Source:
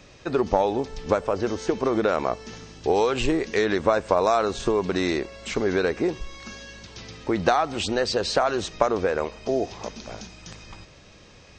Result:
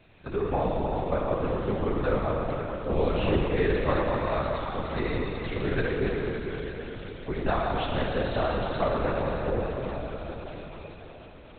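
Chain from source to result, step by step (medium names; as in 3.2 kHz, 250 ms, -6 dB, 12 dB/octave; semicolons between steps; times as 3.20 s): 4.00–4.94 s: high-pass 1.2 kHz 6 dB/octave; plate-style reverb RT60 4.8 s, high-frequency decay 0.9×, DRR -3.5 dB; LPC vocoder at 8 kHz whisper; trim -8 dB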